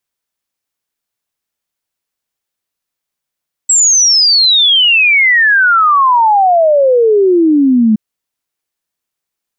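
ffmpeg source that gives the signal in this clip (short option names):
-f lavfi -i "aevalsrc='0.531*clip(min(t,4.27-t)/0.01,0,1)*sin(2*PI*7800*4.27/log(210/7800)*(exp(log(210/7800)*t/4.27)-1))':d=4.27:s=44100"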